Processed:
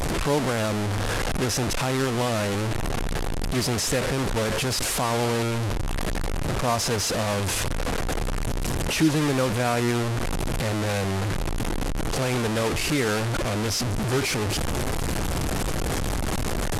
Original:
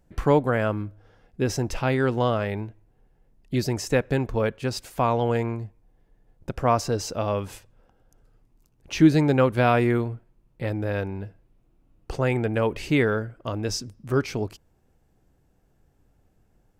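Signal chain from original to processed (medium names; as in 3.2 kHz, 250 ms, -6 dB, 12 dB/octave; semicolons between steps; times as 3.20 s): one-bit delta coder 64 kbps, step -17.5 dBFS; in parallel at +1.5 dB: peak limiter -13.5 dBFS, peak gain reduction 9 dB; on the sum: trim -8.5 dB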